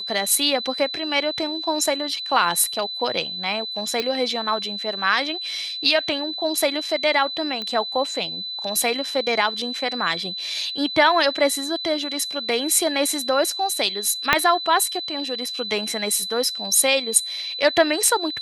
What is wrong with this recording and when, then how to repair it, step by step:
whine 4 kHz -28 dBFS
4.00 s: pop -10 dBFS
7.62 s: pop -16 dBFS
14.33 s: pop -1 dBFS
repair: de-click; band-stop 4 kHz, Q 30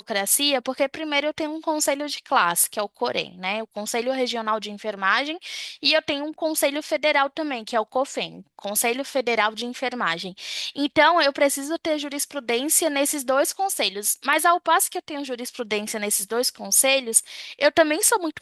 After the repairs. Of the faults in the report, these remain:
14.33 s: pop

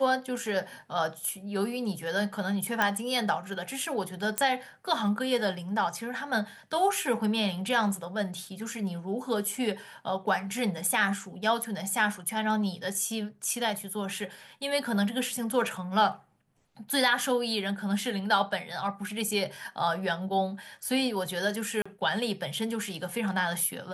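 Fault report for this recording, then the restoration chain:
2.82 s: pop -11 dBFS
4.38 s: pop -11 dBFS
21.82–21.86 s: dropout 35 ms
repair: de-click; interpolate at 21.82 s, 35 ms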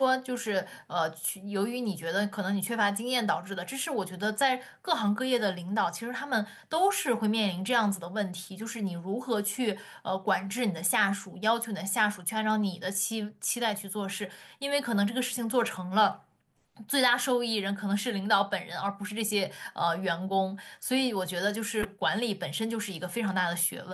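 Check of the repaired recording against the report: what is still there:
nothing left

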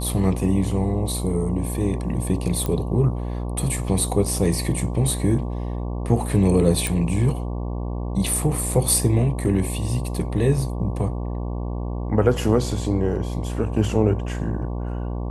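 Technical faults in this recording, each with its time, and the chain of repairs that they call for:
buzz 60 Hz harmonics 19 -27 dBFS
2.66 s: pop -12 dBFS
6.87 s: pop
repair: de-click; de-hum 60 Hz, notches 19

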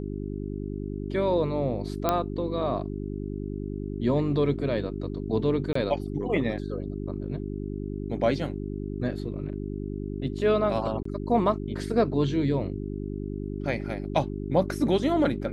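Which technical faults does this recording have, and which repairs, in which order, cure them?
hum 50 Hz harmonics 8 -33 dBFS
2.09 s: pop -9 dBFS
5.73–5.75 s: dropout 24 ms
11.03–11.05 s: dropout 24 ms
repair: de-click; de-hum 50 Hz, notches 8; interpolate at 5.73 s, 24 ms; interpolate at 11.03 s, 24 ms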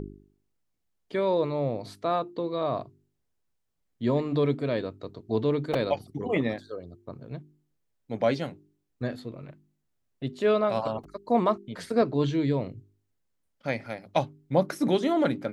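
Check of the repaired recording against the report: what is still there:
nothing left

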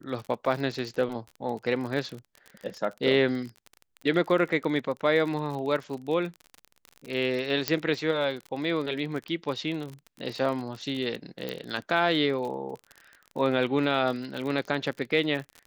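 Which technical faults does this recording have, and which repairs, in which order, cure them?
crackle 38 per s -33 dBFS
7.68 s: pop -8 dBFS
11.49 s: pop -18 dBFS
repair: de-click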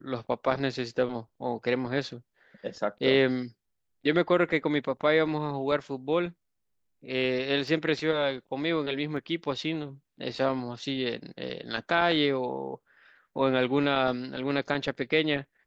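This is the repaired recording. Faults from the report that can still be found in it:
7.68 s: pop

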